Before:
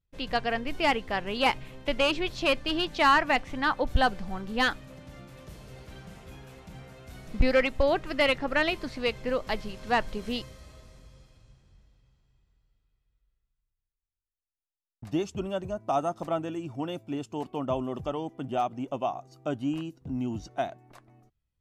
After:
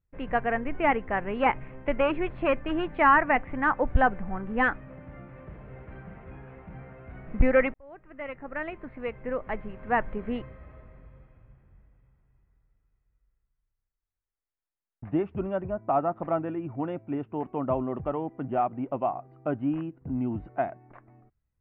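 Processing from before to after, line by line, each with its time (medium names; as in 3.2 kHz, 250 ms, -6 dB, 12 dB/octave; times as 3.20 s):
7.74–10.38 s: fade in linear
whole clip: steep low-pass 2.2 kHz 36 dB/octave; trim +2 dB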